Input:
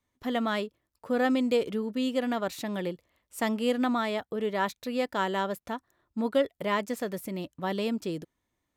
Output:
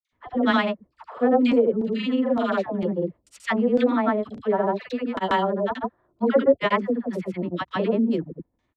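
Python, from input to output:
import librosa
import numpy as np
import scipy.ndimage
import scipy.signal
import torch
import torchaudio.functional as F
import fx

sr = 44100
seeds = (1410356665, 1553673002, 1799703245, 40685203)

y = fx.dispersion(x, sr, late='lows', ms=103.0, hz=760.0)
y = fx.filter_lfo_lowpass(y, sr, shape='saw_down', hz=2.1, low_hz=350.0, high_hz=4900.0, q=0.98)
y = fx.granulator(y, sr, seeds[0], grain_ms=100.0, per_s=20.0, spray_ms=100.0, spread_st=0)
y = y * 10.0 ** (8.5 / 20.0)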